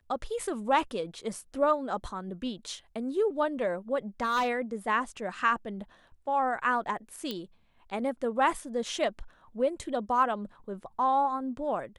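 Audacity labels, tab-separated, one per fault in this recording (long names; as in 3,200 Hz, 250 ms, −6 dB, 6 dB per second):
4.210000	4.490000	clipping −23.5 dBFS
7.310000	7.310000	click −20 dBFS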